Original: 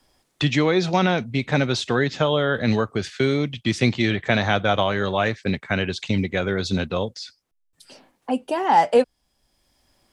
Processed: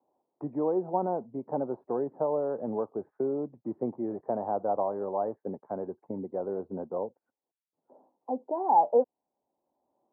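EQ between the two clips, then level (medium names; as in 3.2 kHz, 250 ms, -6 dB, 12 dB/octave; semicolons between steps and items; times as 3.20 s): high-pass 350 Hz 12 dB/octave; elliptic low-pass 920 Hz, stop band 70 dB; -5.0 dB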